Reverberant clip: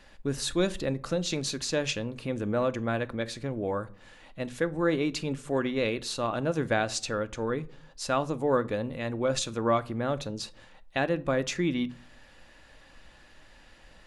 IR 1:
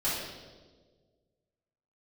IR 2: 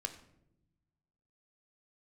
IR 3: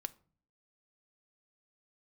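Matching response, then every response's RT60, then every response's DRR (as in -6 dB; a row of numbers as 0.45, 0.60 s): 3; 1.5, 0.85, 0.45 s; -11.0, 7.0, 11.5 dB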